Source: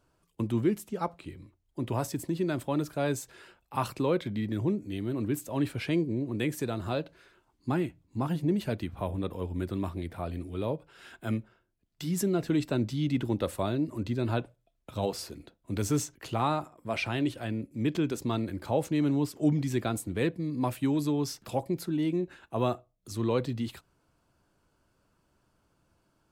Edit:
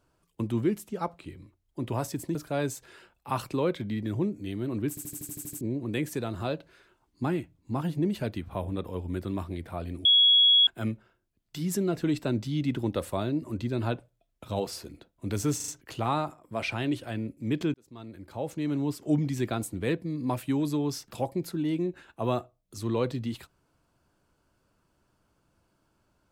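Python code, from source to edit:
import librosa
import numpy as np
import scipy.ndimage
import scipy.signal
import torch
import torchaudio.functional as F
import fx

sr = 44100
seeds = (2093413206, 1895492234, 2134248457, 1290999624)

y = fx.edit(x, sr, fx.cut(start_s=2.35, length_s=0.46),
    fx.stutter_over(start_s=5.35, slice_s=0.08, count=9),
    fx.bleep(start_s=10.51, length_s=0.62, hz=3340.0, db=-16.0),
    fx.stutter(start_s=16.02, slice_s=0.04, count=4),
    fx.fade_in_span(start_s=18.08, length_s=1.34), tone=tone)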